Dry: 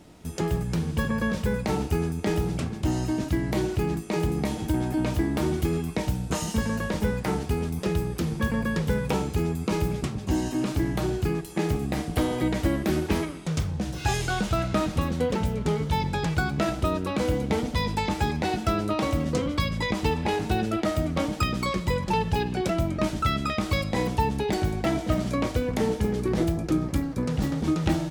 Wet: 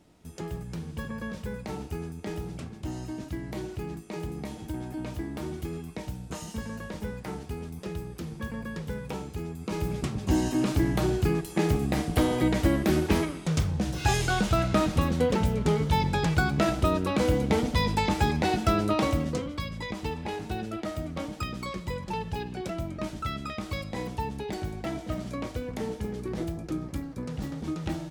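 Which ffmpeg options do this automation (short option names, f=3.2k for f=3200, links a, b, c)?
-af "volume=1dB,afade=t=in:st=9.57:d=0.75:silence=0.298538,afade=t=out:st=19:d=0.49:silence=0.354813"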